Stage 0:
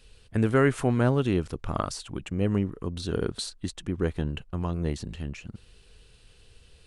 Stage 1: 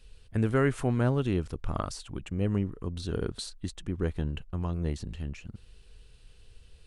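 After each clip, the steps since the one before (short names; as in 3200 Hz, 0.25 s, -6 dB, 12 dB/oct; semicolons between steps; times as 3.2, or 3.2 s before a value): low shelf 79 Hz +9 dB; gain -4.5 dB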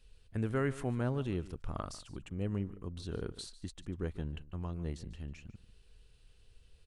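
echo 0.146 s -17 dB; gain -7.5 dB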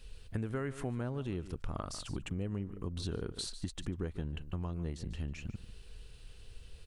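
compressor 6:1, threshold -44 dBFS, peak gain reduction 15.5 dB; gain +10 dB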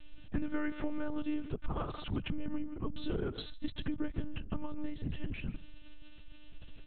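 monotone LPC vocoder at 8 kHz 300 Hz; gain +4 dB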